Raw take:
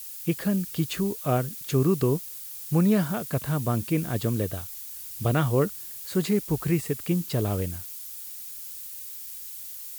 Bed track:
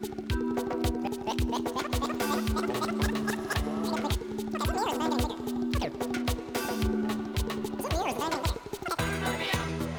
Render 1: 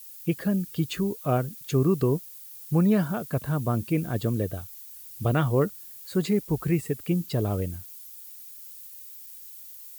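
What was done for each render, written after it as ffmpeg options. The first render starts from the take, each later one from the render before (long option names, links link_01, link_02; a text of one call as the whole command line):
ffmpeg -i in.wav -af "afftdn=noise_reduction=8:noise_floor=-40" out.wav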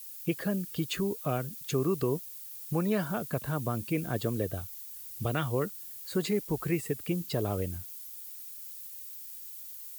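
ffmpeg -i in.wav -filter_complex "[0:a]acrossover=split=320|1700[link_01][link_02][link_03];[link_01]acompressor=threshold=-32dB:ratio=6[link_04];[link_02]alimiter=limit=-23dB:level=0:latency=1:release=469[link_05];[link_04][link_05][link_03]amix=inputs=3:normalize=0" out.wav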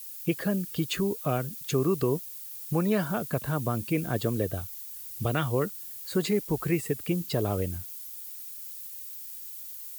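ffmpeg -i in.wav -af "volume=3dB" out.wav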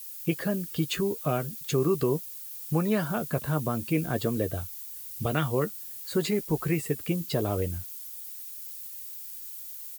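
ffmpeg -i in.wav -filter_complex "[0:a]asplit=2[link_01][link_02];[link_02]adelay=13,volume=-10.5dB[link_03];[link_01][link_03]amix=inputs=2:normalize=0" out.wav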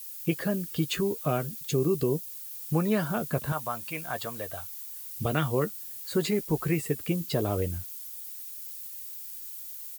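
ffmpeg -i in.wav -filter_complex "[0:a]asettb=1/sr,asplit=3[link_01][link_02][link_03];[link_01]atrim=end=1.664[link_04];[link_02]atrim=start=1.66:end=2.27,asetpts=PTS-STARTPTS,afade=type=in:duration=0.004:curve=qsin,afade=type=out:start_time=0.606:duration=0.004:curve=qsin,equalizer=frequency=1300:width_type=o:width=1.3:gain=-9.5[link_05];[link_03]atrim=start=2.266[link_06];[link_04][link_05]acrossfade=duration=0.004:curve1=hsin:curve2=qsin[link_07];[link_07][link_06]acrossfade=duration=0.004:curve1=qsin:curve2=hsin,asettb=1/sr,asplit=3[link_08][link_09][link_10];[link_08]atrim=end=3.524[link_11];[link_09]atrim=start=3.52:end=5.16,asetpts=PTS-STARTPTS,afade=type=in:duration=0.004:curve=qsin,afade=type=out:start_time=1.636:duration=0.004:curve=qsin,lowshelf=frequency=540:width_type=q:width=1.5:gain=-12.5[link_12];[link_10]atrim=start=5.156[link_13];[link_11][link_12]acrossfade=duration=0.004:curve1=hsin:curve2=qsin[link_14];[link_14][link_13]acrossfade=duration=0.004:curve1=qsin:curve2=hsin" out.wav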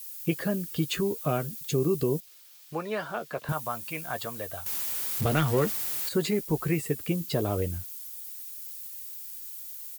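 ffmpeg -i in.wav -filter_complex "[0:a]asettb=1/sr,asplit=3[link_01][link_02][link_03];[link_01]atrim=end=2.204[link_04];[link_02]atrim=start=2.2:end=3.49,asetpts=PTS-STARTPTS,afade=type=in:duration=0.004:curve=qsin,afade=type=out:start_time=1.286:duration=0.004:curve=qsin,acrossover=split=390 5400:gain=0.158 1 0.224[link_05][link_06][link_07];[link_05][link_06][link_07]amix=inputs=3:normalize=0[link_08];[link_03]atrim=start=3.486[link_09];[link_04][link_08]acrossfade=duration=0.004:curve1=hsin:curve2=qsin[link_10];[link_10][link_09]acrossfade=duration=0.004:curve1=qsin:curve2=hsin,asettb=1/sr,asplit=3[link_11][link_12][link_13];[link_11]atrim=end=4.664[link_14];[link_12]atrim=start=4.66:end=6.09,asetpts=PTS-STARTPTS,afade=type=in:duration=0.004:curve=qsin,afade=type=out:start_time=1.426:duration=0.004:curve=qsin,aeval=exprs='val(0)+0.5*0.0376*sgn(val(0))':channel_layout=same[link_15];[link_13]atrim=start=6.086[link_16];[link_14][link_15]acrossfade=duration=0.004:curve1=hsin:curve2=qsin[link_17];[link_17][link_16]acrossfade=duration=0.004:curve1=qsin:curve2=hsin" out.wav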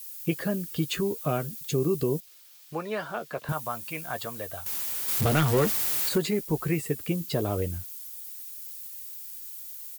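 ffmpeg -i in.wav -filter_complex "[0:a]asettb=1/sr,asplit=3[link_01][link_02][link_03];[link_01]atrim=end=5.084[link_04];[link_02]atrim=start=5.08:end=6.18,asetpts=PTS-STARTPTS,afade=type=in:duration=0.004:curve=qsin,afade=type=out:start_time=1.096:duration=0.004:curve=qsin,aeval=exprs='val(0)+0.5*0.0355*sgn(val(0))':channel_layout=same[link_05];[link_03]atrim=start=6.176[link_06];[link_04][link_05]acrossfade=duration=0.004:curve1=hsin:curve2=qsin[link_07];[link_07][link_06]acrossfade=duration=0.004:curve1=qsin:curve2=hsin" out.wav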